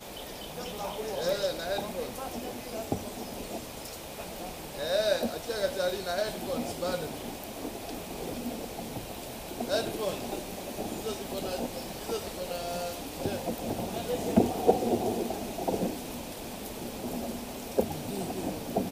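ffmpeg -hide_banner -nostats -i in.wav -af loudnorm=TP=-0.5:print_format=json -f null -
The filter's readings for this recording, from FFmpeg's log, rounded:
"input_i" : "-33.5",
"input_tp" : "-6.8",
"input_lra" : "4.9",
"input_thresh" : "-43.5",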